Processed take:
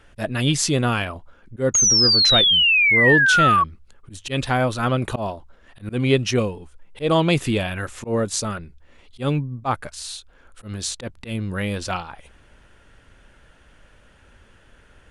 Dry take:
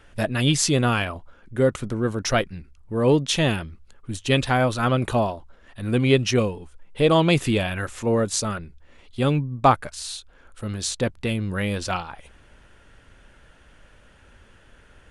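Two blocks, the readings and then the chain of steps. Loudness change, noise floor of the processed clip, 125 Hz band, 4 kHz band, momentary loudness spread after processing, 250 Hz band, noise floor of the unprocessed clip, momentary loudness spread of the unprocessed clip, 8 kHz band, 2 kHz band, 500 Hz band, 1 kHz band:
+4.0 dB, -53 dBFS, -0.5 dB, +10.0 dB, 18 LU, -1.0 dB, -53 dBFS, 15 LU, +7.5 dB, +9.0 dB, -1.0 dB, +2.0 dB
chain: painted sound fall, 1.74–3.64, 1100–6700 Hz -16 dBFS; auto swell 0.109 s

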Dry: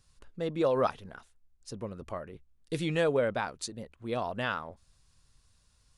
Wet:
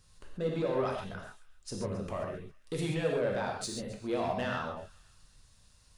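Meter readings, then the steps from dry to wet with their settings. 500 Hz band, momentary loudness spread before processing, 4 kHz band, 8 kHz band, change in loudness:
-2.0 dB, 21 LU, -1.5 dB, +1.5 dB, -2.5 dB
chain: limiter -26.5 dBFS, peak gain reduction 11 dB; soft clip -29.5 dBFS, distortion -18 dB; on a send: thin delay 0.269 s, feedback 33%, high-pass 1900 Hz, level -18.5 dB; on the sum: non-linear reverb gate 0.16 s flat, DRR -0.5 dB; gain +2 dB

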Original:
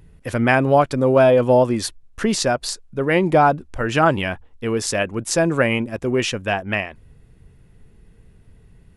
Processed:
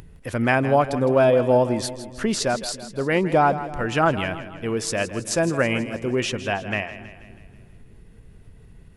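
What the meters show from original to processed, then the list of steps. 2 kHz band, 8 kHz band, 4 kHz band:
-3.0 dB, -3.0 dB, -3.0 dB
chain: upward compressor, threshold -35 dBFS; split-band echo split 360 Hz, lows 0.289 s, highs 0.161 s, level -13 dB; gain -3.5 dB

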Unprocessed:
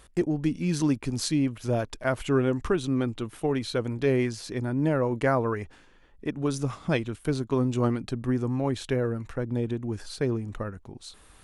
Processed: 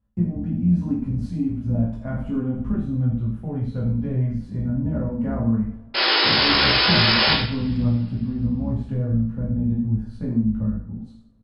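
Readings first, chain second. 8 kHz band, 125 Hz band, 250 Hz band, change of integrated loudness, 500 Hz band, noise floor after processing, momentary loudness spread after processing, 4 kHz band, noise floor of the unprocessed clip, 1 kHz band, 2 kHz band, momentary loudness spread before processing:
under -20 dB, +7.0 dB, +4.5 dB, +6.5 dB, -4.5 dB, -43 dBFS, 11 LU, +19.5 dB, -55 dBFS, +6.5 dB, +11.5 dB, 10 LU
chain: octaver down 1 oct, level -4 dB; gate -43 dBFS, range -20 dB; EQ curve 150 Hz 0 dB, 230 Hz +9 dB, 360 Hz -18 dB, 590 Hz -8 dB, 6200 Hz -30 dB; compressor 1.5:1, threshold -35 dBFS, peak gain reduction 6.5 dB; painted sound noise, 5.94–7.34, 290–5300 Hz -26 dBFS; on a send: early reflections 18 ms -4.5 dB, 79 ms -9 dB; on the sum: two-slope reverb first 0.5 s, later 2.5 s, from -25 dB, DRR -4.5 dB

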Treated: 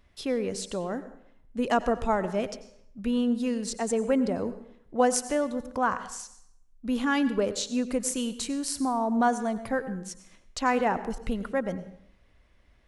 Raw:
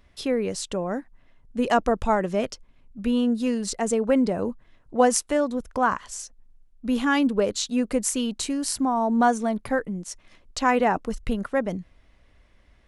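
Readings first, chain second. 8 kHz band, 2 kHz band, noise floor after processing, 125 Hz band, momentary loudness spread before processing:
-4.0 dB, -4.0 dB, -60 dBFS, -3.5 dB, 13 LU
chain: plate-style reverb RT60 0.7 s, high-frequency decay 0.8×, pre-delay 80 ms, DRR 13 dB; gain -4 dB

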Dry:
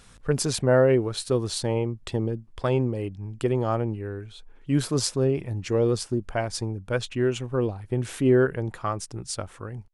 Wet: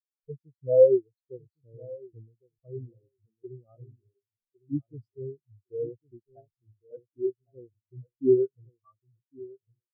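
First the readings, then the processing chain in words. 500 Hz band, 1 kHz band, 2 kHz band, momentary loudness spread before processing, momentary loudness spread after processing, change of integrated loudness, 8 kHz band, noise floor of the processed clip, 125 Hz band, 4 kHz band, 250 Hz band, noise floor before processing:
-2.0 dB, under -25 dB, under -40 dB, 12 LU, 25 LU, 0.0 dB, under -40 dB, under -85 dBFS, -17.0 dB, under -40 dB, -9.0 dB, -51 dBFS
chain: on a send: feedback echo 1.106 s, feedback 36%, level -6 dB; on the sum: spectral expander 4:1

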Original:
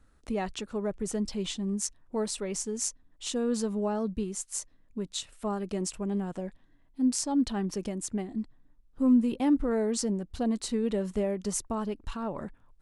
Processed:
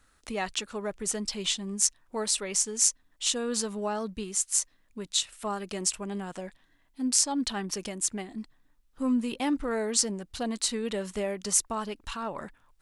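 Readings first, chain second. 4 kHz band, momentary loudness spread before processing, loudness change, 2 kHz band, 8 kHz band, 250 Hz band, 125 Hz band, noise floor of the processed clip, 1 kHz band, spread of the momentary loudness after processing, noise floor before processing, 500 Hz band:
+8.5 dB, 10 LU, +2.0 dB, +6.5 dB, +9.0 dB, -4.5 dB, -5.0 dB, -66 dBFS, +2.5 dB, 12 LU, -62 dBFS, -2.0 dB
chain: tilt shelf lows -7.5 dB, about 780 Hz; gain +1.5 dB

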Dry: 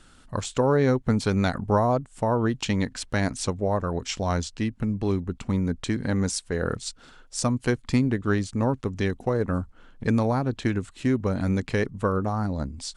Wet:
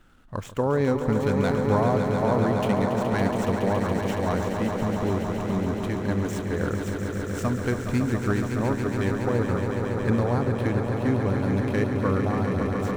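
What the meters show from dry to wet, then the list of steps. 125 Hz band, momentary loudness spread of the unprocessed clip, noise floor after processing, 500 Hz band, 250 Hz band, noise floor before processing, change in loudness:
+1.0 dB, 7 LU, -32 dBFS, +2.0 dB, +1.0 dB, -54 dBFS, +1.0 dB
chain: median filter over 9 samples; on a send: swelling echo 0.14 s, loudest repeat 5, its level -8 dB; on the sum: gain -2.5 dB

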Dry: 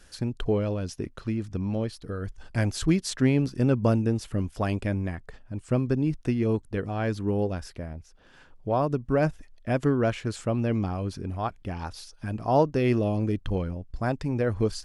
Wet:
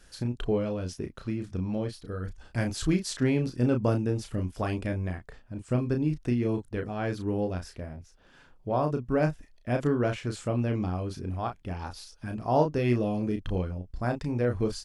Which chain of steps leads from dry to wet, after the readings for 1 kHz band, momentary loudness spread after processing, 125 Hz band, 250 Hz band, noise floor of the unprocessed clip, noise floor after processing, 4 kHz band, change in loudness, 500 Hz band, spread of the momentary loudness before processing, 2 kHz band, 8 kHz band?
-2.0 dB, 11 LU, -2.5 dB, -2.5 dB, -54 dBFS, -57 dBFS, -2.0 dB, -2.0 dB, -2.0 dB, 12 LU, -2.0 dB, -2.0 dB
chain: doubler 33 ms -6 dB; gain -3 dB

